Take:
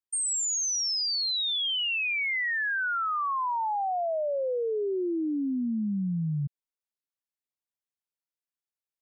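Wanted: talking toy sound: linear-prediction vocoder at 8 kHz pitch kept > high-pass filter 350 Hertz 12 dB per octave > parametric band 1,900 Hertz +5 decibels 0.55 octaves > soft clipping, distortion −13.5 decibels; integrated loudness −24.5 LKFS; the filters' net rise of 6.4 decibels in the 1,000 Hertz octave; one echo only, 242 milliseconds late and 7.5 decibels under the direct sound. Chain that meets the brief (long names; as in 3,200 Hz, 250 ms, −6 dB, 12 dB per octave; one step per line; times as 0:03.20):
parametric band 1,000 Hz +7.5 dB
single-tap delay 242 ms −7.5 dB
linear-prediction vocoder at 8 kHz pitch kept
high-pass filter 350 Hz 12 dB per octave
parametric band 1,900 Hz +5 dB 0.55 octaves
soft clipping −21.5 dBFS
level +1.5 dB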